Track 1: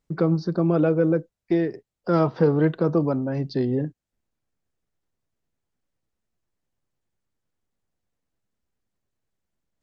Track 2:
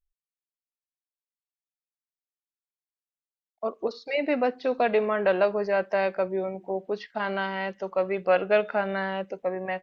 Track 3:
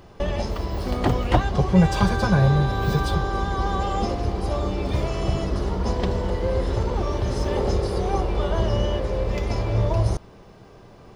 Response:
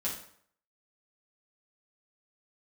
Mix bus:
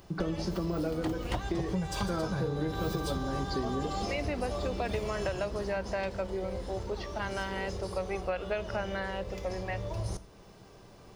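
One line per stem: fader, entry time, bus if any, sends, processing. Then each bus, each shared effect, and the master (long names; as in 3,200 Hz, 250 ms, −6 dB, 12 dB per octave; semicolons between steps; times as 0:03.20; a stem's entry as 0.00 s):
−8.0 dB, 0.00 s, send −6.5 dB, no processing
−6.5 dB, 0.00 s, no send, no processing
0:02.54 −8.5 dB → 0:02.85 −0.5 dB → 0:05.21 −0.5 dB → 0:05.95 −7.5 dB, 0.00 s, send −20 dB, automatic ducking −10 dB, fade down 1.25 s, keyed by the second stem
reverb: on, RT60 0.60 s, pre-delay 5 ms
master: high-shelf EQ 4,300 Hz +11.5 dB; downward compressor 10 to 1, threshold −28 dBFS, peak gain reduction 12 dB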